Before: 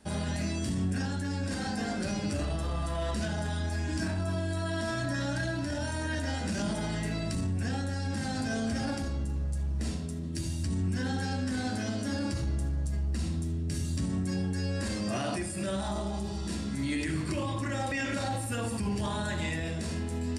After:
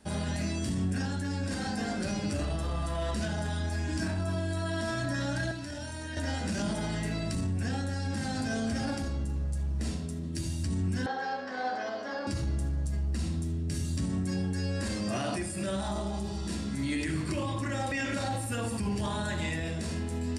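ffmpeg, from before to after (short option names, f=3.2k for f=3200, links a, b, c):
-filter_complex "[0:a]asettb=1/sr,asplit=3[a][b][c];[a]atrim=end=5.514[d];[b]atrim=start=5.51:end=6.17,asetpts=PTS-STARTPTS,afade=t=in:d=0.004:c=qsin,afade=t=out:st=0.656:d=0.004:c=qsin,acrossover=split=800|1800[e][f][g];[e]acompressor=threshold=-38dB:ratio=4[h];[f]acompressor=threshold=-52dB:ratio=4[i];[g]acompressor=threshold=-44dB:ratio=4[j];[h][i][j]amix=inputs=3:normalize=0[k];[c]atrim=start=6.166[l];[d][k]acrossfade=d=0.004:c1=hsin:c2=qsin[m];[m][l]acrossfade=d=0.004:c1=qsin:c2=hsin,asettb=1/sr,asplit=3[n][o][p];[n]atrim=end=11.064[q];[o]atrim=start=11.06:end=12.27,asetpts=PTS-STARTPTS,afade=t=in:d=0.004:c=qsin,afade=t=out:st=1.206:d=0.004:c=qsin,highpass=490,equalizer=f=490:t=q:w=4:g=7,equalizer=f=730:t=q:w=4:g=9,equalizer=f=1.1k:t=q:w=4:g=7,equalizer=f=1.7k:t=q:w=4:g=3,equalizer=f=2.6k:t=q:w=4:g=-5,equalizer=f=3.8k:t=q:w=4:g=-5,lowpass=f=4.6k:w=0.5412,lowpass=f=4.6k:w=1.3066[r];[p]atrim=start=12.266[s];[q][r]acrossfade=d=0.004:c1=hsin:c2=qsin[t];[t][s]acrossfade=d=0.004:c1=qsin:c2=hsin"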